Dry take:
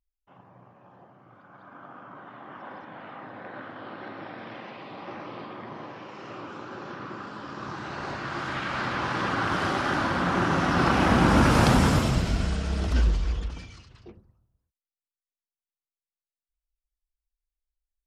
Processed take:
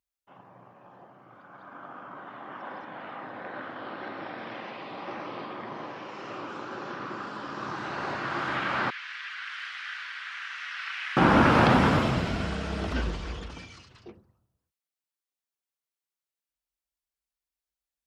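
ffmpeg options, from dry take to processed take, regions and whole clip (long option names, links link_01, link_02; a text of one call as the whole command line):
ffmpeg -i in.wav -filter_complex "[0:a]asettb=1/sr,asplit=3[link_01][link_02][link_03];[link_01]atrim=end=8.904[link_04];[link_02]atrim=start=8.9:end=11.17,asetpts=PTS-STARTPTS,afade=type=in:duration=0.004:curve=qsin,afade=type=out:start_time=2.266:duration=0.004:curve=qsin,asuperpass=centerf=4700:order=8:qfactor=0.55,aemphasis=mode=reproduction:type=75kf[link_05];[link_03]atrim=start=11.166[link_06];[link_04][link_05]acrossfade=duration=0.004:curve1=hsin:curve2=qsin[link_07];[link_07][link_06]acrossfade=duration=0.004:curve1=qsin:curve2=hsin,highpass=68,acrossover=split=3800[link_08][link_09];[link_09]acompressor=threshold=-55dB:ratio=4:attack=1:release=60[link_10];[link_08][link_10]amix=inputs=2:normalize=0,lowshelf=frequency=170:gain=-8.5,volume=2.5dB" out.wav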